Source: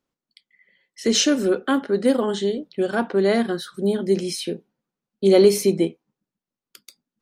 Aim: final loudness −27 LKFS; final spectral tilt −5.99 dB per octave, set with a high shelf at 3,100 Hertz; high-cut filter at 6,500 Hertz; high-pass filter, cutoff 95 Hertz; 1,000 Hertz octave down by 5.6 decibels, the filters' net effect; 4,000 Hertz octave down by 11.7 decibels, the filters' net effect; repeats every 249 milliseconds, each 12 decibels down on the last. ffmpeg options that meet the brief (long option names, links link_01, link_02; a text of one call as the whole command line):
ffmpeg -i in.wav -af "highpass=95,lowpass=6500,equalizer=frequency=1000:width_type=o:gain=-7,highshelf=frequency=3100:gain=-8,equalizer=frequency=4000:width_type=o:gain=-8.5,aecho=1:1:249|498|747:0.251|0.0628|0.0157,volume=-5dB" out.wav